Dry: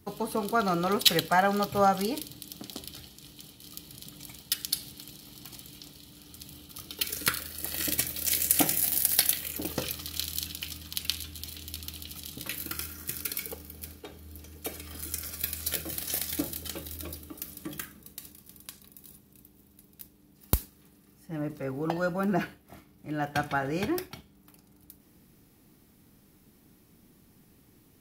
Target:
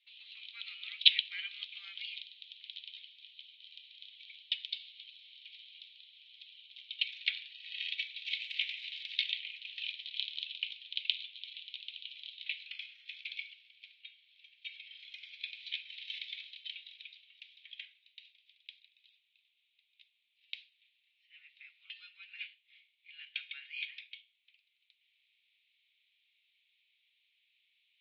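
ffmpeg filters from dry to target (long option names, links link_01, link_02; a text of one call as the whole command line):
ffmpeg -i in.wav -af "asuperpass=centerf=2900:order=8:qfactor=1.8,volume=2.5dB" out.wav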